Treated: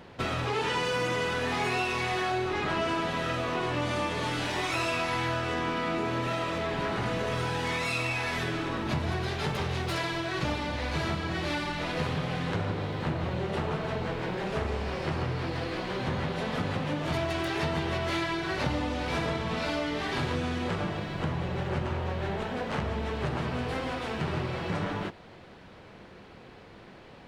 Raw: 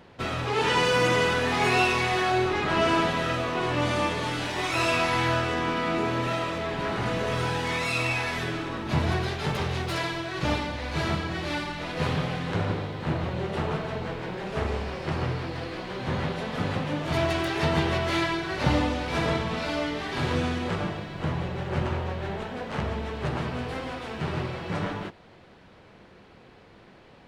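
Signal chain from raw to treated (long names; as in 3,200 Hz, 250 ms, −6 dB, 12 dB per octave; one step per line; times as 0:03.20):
downward compressor 4 to 1, threshold −30 dBFS, peak gain reduction 10.5 dB
level +2.5 dB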